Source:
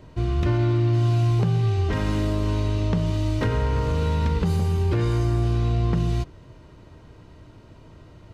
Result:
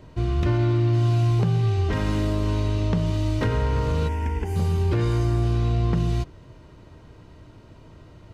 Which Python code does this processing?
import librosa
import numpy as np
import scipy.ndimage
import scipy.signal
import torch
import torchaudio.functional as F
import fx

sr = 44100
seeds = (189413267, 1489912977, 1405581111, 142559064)

y = fx.fixed_phaser(x, sr, hz=810.0, stages=8, at=(4.07, 4.55), fade=0.02)